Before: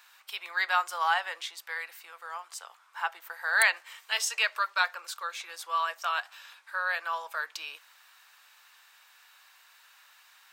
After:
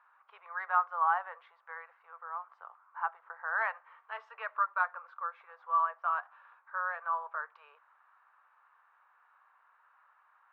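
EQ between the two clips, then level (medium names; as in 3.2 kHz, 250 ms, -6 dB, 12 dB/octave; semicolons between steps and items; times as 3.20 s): brick-wall FIR high-pass 380 Hz; four-pole ladder low-pass 1.4 kHz, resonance 50%; +3.0 dB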